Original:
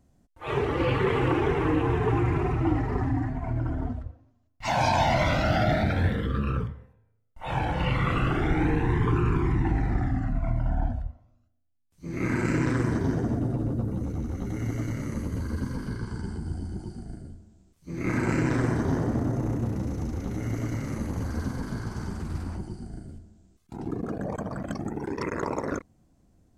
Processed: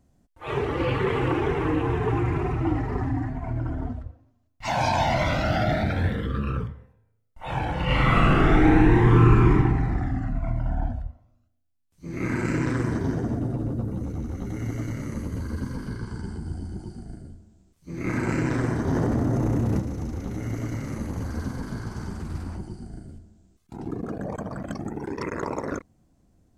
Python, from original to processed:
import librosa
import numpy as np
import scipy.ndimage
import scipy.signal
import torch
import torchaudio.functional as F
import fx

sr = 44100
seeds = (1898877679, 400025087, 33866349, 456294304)

y = fx.reverb_throw(x, sr, start_s=7.84, length_s=1.71, rt60_s=1.1, drr_db=-6.5)
y = fx.env_flatten(y, sr, amount_pct=100, at=(18.87, 19.8))